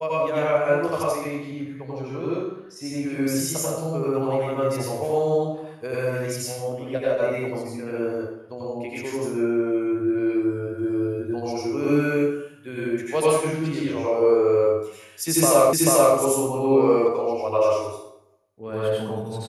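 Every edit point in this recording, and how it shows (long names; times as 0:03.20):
0:15.73: the same again, the last 0.44 s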